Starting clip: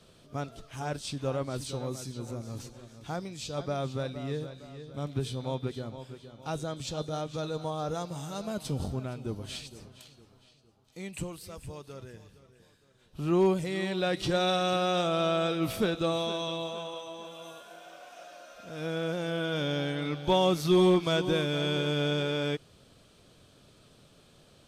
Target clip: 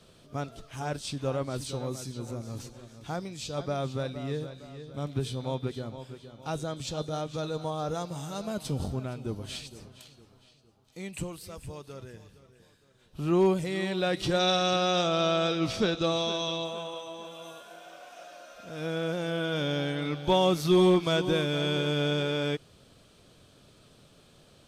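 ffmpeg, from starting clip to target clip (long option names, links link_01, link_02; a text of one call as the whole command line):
ffmpeg -i in.wav -filter_complex "[0:a]asettb=1/sr,asplit=3[link_01][link_02][link_03];[link_01]atrim=end=14.394[link_04];[link_02]atrim=start=14.39:end=16.65,asetpts=PTS-STARTPTS,afade=type=in:duration=0.004:curve=qsin,afade=type=out:start_time=2.256:duration=0.004:curve=qsin,lowpass=frequency=5600:width_type=q:width=2.2[link_05];[link_03]atrim=start=16.646[link_06];[link_04][link_05]acrossfade=duration=0.004:curve1=hsin:curve2=qsin[link_07];[link_07][link_06]acrossfade=duration=0.004:curve1=qsin:curve2=hsin,volume=1dB" out.wav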